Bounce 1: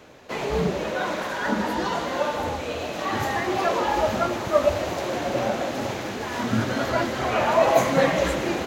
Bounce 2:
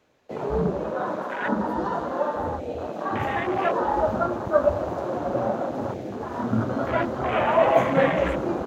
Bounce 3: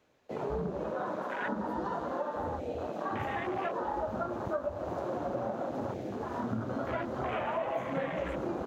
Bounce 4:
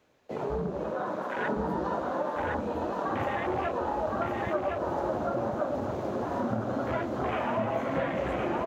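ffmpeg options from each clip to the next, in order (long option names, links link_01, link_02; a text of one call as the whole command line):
ffmpeg -i in.wav -af "afwtdn=0.0447" out.wav
ffmpeg -i in.wav -af "acompressor=threshold=-26dB:ratio=6,volume=-4.5dB" out.wav
ffmpeg -i in.wav -af "aecho=1:1:1063:0.708,volume=2.5dB" out.wav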